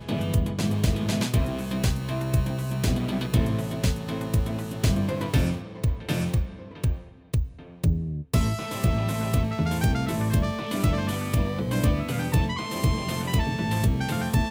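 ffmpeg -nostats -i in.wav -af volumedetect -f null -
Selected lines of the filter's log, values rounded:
mean_volume: -25.0 dB
max_volume: -9.8 dB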